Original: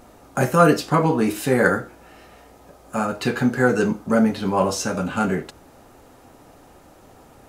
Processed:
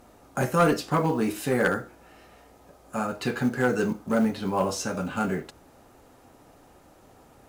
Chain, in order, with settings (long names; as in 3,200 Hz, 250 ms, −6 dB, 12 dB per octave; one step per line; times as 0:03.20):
asymmetric clip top −10.5 dBFS
floating-point word with a short mantissa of 4 bits
level −5.5 dB